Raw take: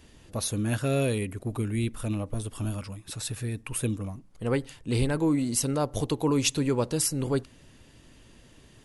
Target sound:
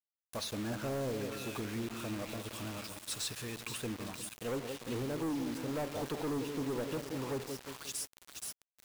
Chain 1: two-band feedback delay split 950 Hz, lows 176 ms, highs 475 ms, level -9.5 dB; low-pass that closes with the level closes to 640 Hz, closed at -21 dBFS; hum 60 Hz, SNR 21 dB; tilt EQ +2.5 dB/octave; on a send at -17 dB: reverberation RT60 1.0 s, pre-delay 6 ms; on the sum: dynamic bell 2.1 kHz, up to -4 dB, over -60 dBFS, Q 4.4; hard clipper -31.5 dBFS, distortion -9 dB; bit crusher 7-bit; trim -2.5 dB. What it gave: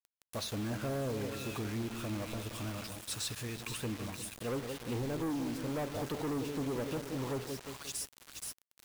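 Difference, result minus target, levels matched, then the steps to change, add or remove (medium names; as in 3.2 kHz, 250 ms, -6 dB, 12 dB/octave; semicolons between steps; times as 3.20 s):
125 Hz band +2.5 dB
add after dynamic bell: high-pass 150 Hz 6 dB/octave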